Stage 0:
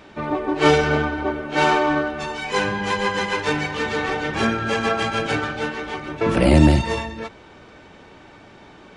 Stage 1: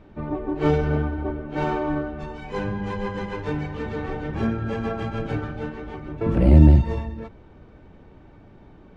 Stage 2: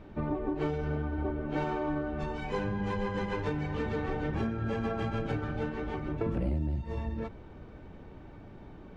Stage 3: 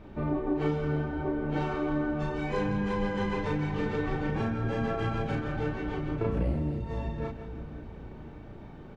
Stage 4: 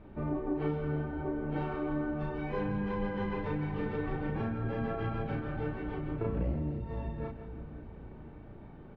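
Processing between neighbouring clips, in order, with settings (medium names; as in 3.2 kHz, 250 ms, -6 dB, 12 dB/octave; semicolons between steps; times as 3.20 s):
tilt EQ -4 dB/octave; trim -10 dB
compression 10:1, threshold -28 dBFS, peak gain reduction 21 dB
doubling 34 ms -2 dB; two-band feedback delay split 460 Hz, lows 531 ms, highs 166 ms, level -10.5 dB
distance through air 270 m; trim -3.5 dB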